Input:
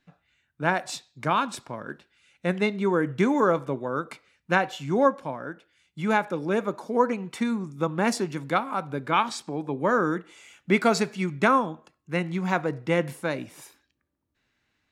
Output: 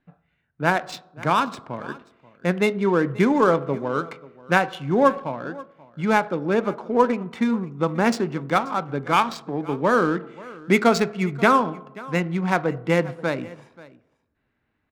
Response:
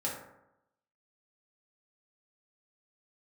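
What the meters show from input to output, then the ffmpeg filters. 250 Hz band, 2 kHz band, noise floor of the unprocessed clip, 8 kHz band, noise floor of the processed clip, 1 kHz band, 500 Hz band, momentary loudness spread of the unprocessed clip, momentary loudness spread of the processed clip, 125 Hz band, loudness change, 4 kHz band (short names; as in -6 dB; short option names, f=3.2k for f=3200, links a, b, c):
+4.0 dB, +3.5 dB, -77 dBFS, -0.5 dB, -73 dBFS, +4.0 dB, +4.0 dB, 13 LU, 15 LU, +4.0 dB, +3.5 dB, +2.5 dB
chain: -filter_complex "[0:a]asplit=2[a][b];[1:a]atrim=start_sample=2205,asetrate=36603,aresample=44100[c];[b][c]afir=irnorm=-1:irlink=0,volume=-20.5dB[d];[a][d]amix=inputs=2:normalize=0,adynamicsmooth=sensitivity=5.5:basefreq=1.8k,aecho=1:1:534:0.0944,volume=3dB"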